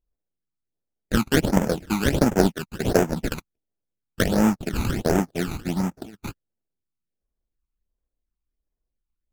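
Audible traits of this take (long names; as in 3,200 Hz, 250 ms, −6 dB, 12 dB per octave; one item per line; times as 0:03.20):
aliases and images of a low sample rate 1,100 Hz, jitter 20%
phaser sweep stages 12, 1.4 Hz, lowest notch 540–4,100 Hz
MP3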